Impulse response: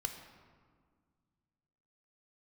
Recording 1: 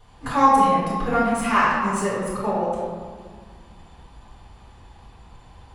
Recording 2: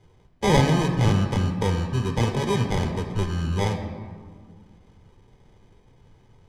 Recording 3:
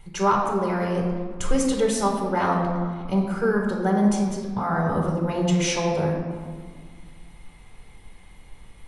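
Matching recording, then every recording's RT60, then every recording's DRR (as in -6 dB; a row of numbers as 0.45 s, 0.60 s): 2; 1.8 s, 1.8 s, 1.8 s; -9.0 dB, 4.0 dB, -1.0 dB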